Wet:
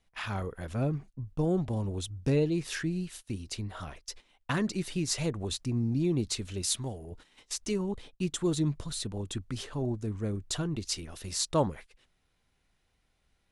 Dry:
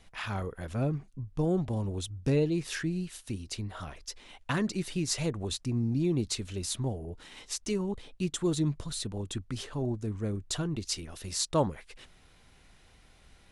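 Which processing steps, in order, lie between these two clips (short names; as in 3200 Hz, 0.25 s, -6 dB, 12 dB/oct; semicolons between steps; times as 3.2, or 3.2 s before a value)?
gate -46 dBFS, range -15 dB; 6.62–7.12 tilt shelf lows -5 dB, about 1200 Hz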